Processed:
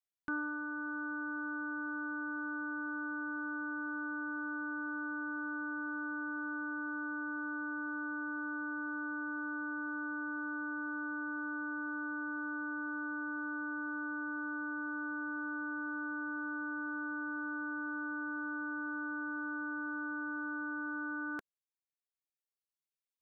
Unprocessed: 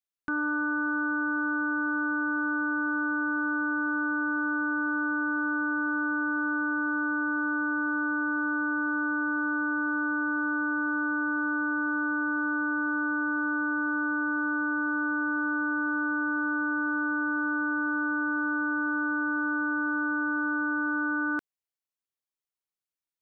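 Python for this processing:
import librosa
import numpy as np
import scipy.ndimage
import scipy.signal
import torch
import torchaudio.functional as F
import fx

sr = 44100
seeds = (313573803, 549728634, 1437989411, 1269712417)

y = fx.dereverb_blind(x, sr, rt60_s=1.8)
y = fx.rider(y, sr, range_db=10, speed_s=0.5)
y = y * librosa.db_to_amplitude(-3.5)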